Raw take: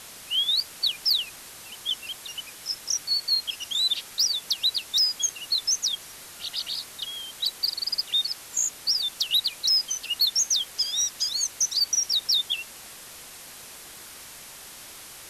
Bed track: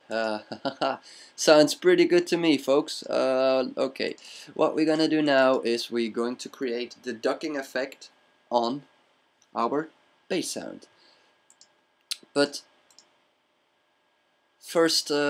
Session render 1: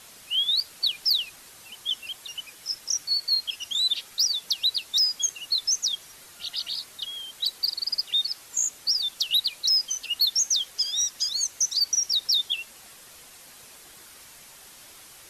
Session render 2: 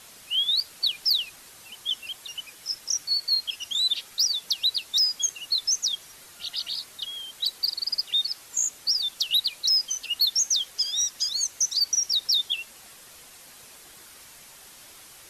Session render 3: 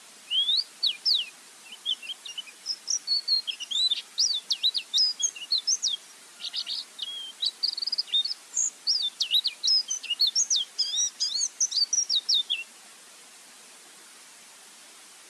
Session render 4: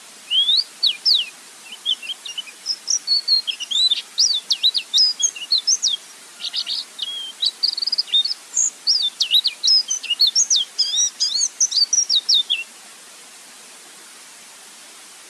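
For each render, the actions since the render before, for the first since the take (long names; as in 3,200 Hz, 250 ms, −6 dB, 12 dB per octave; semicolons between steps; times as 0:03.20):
broadband denoise 6 dB, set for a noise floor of −44 dBFS
no processing that can be heard
elliptic band-pass filter 200–9,800 Hz, stop band 50 dB; notch filter 540 Hz, Q 12
level +8 dB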